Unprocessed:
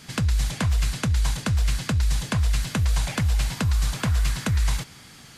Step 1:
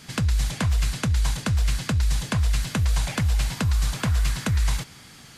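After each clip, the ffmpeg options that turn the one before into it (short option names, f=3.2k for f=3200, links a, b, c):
-af anull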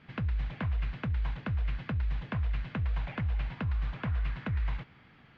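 -af "lowpass=f=2.7k:w=0.5412,lowpass=f=2.7k:w=1.3066,volume=-9dB"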